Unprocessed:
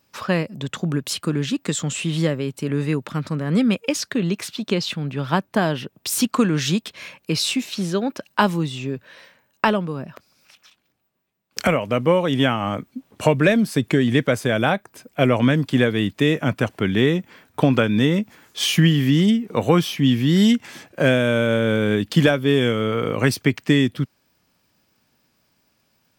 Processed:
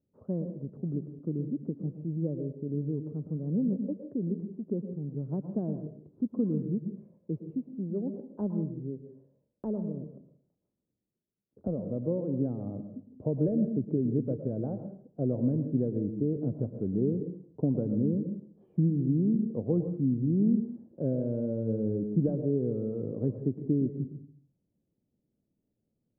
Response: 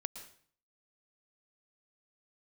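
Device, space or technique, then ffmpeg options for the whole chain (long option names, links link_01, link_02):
next room: -filter_complex "[0:a]asettb=1/sr,asplit=3[link_01][link_02][link_03];[link_01]atrim=end=9.874[link_04];[link_02]atrim=start=9.87:end=11.84,asetpts=PTS-STARTPTS,afade=type=in:duration=0.004:curve=qsin,afade=type=out:start_time=1.966:duration=0.004:curve=qsin,lowpass=frequency=1400:width=0.5412,lowpass=frequency=1400:width=1.3066[link_05];[link_03]atrim=start=11.836[link_06];[link_04][link_05]acrossfade=duration=0.004:curve1=hsin:curve2=qsin[link_07];[link_07][link_06]acrossfade=duration=0.004:curve1=qsin:curve2=hsin,lowpass=frequency=480:width=0.5412,lowpass=frequency=480:width=1.3066[link_08];[1:a]atrim=start_sample=2205[link_09];[link_08][link_09]afir=irnorm=-1:irlink=0,volume=-8dB"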